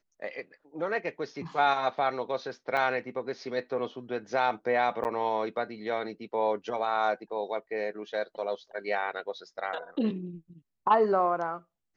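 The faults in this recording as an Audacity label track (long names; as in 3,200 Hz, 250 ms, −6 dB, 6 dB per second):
2.770000	2.770000	drop-out 4.8 ms
5.040000	5.050000	drop-out 9.6 ms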